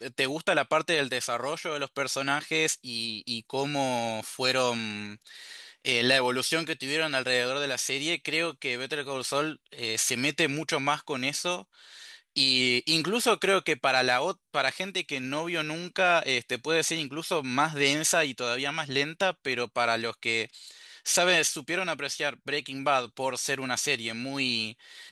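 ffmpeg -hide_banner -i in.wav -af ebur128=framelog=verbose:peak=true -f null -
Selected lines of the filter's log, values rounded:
Integrated loudness:
  I:         -27.1 LUFS
  Threshold: -37.4 LUFS
Loudness range:
  LRA:         3.6 LU
  Threshold: -47.3 LUFS
  LRA low:   -29.0 LUFS
  LRA high:  -25.4 LUFS
True peak:
  Peak:       -8.2 dBFS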